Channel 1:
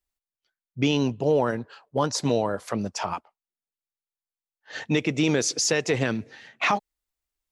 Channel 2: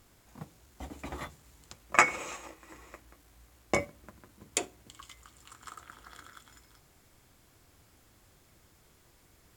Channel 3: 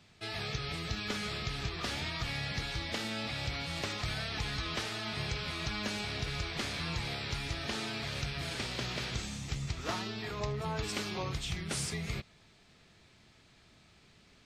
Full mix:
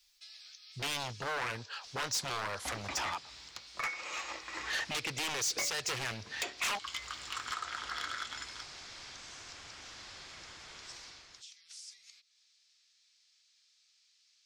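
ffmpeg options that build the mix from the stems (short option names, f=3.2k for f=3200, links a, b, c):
-filter_complex "[0:a]lowshelf=f=140:t=q:w=1.5:g=8.5,aeval=exprs='0.0794*(abs(mod(val(0)/0.0794+3,4)-2)-1)':c=same,volume=2dB[a];[1:a]lowpass=f=5.8k:w=0.5412,lowpass=f=5.8k:w=1.3066,dynaudnorm=f=170:g=7:m=13.5dB,adelay=1850,volume=-3dB[b];[2:a]acompressor=threshold=-42dB:ratio=10,bandpass=f=5.6k:t=q:w=2.3:csg=0,volume=-6.5dB[c];[a][b]amix=inputs=2:normalize=0,acompressor=threshold=-36dB:ratio=4,volume=0dB[d];[c][d]amix=inputs=2:normalize=0,tiltshelf=f=640:g=-9.5,asoftclip=type=tanh:threshold=-28.5dB"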